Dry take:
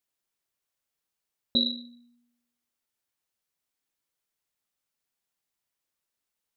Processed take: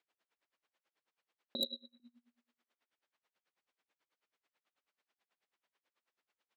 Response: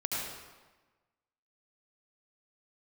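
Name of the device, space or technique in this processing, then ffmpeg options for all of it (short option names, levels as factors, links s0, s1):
helicopter radio: -filter_complex "[0:a]asettb=1/sr,asplit=3[s0][s1][s2];[s0]atrim=end=1.604[s3];[s1]atrim=start=1.6:end=2,asetpts=PTS-STARTPTS,afade=t=in:d=0.004:c=qsin,afade=t=out:st=0.396:d=0.004:c=qsin,acrossover=split=510 3100:gain=0.126 1 0.224[s4][s5][s6];[s4][s5][s6]amix=inputs=3:normalize=0[s7];[s2]atrim=start=1.996[s8];[s3][s7]acrossfade=d=0.004:c1=hsin:c2=qsin[s9];[s9][s8]acrossfade=d=0.004:c1=qsin:c2=hsin,highpass=330,lowpass=2900,aeval=exprs='val(0)*pow(10,-27*(0.5-0.5*cos(2*PI*9.2*n/s))/20)':c=same,asoftclip=type=hard:threshold=0.0119,volume=3.76"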